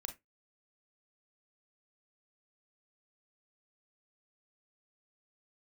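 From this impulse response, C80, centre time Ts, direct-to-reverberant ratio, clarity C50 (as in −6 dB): 24.0 dB, 11 ms, 6.0 dB, 13.5 dB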